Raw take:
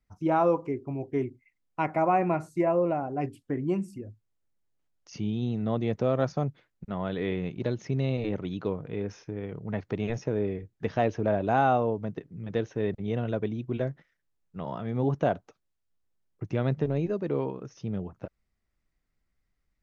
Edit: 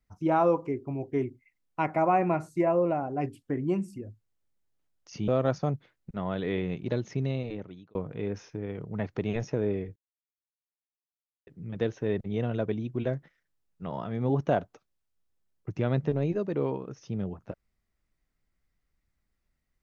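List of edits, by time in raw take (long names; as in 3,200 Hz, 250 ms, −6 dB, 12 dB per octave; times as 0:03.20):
0:05.28–0:06.02: remove
0:07.83–0:08.69: fade out
0:10.70–0:12.21: silence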